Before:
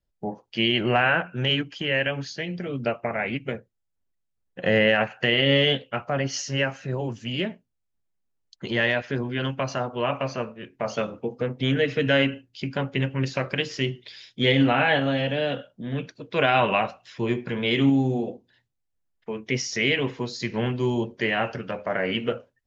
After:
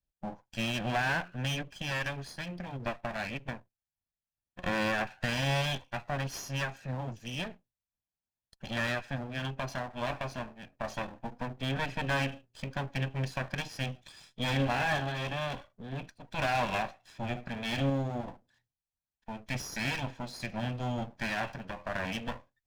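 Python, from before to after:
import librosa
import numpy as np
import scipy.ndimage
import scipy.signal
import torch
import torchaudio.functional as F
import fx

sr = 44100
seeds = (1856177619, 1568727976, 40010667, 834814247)

y = fx.lower_of_two(x, sr, delay_ms=1.2)
y = fx.slew_limit(y, sr, full_power_hz=190.0)
y = F.gain(torch.from_numpy(y), -7.5).numpy()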